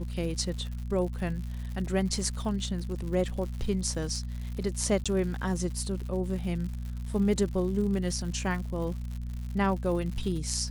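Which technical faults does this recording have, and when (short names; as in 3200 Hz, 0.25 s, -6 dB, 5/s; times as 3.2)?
crackle 140/s -37 dBFS
hum 60 Hz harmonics 4 -35 dBFS
5.04–5.06 gap 16 ms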